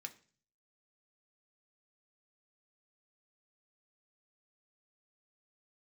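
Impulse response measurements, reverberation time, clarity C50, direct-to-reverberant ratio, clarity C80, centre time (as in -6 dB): 0.40 s, 16.5 dB, 5.0 dB, 21.0 dB, 6 ms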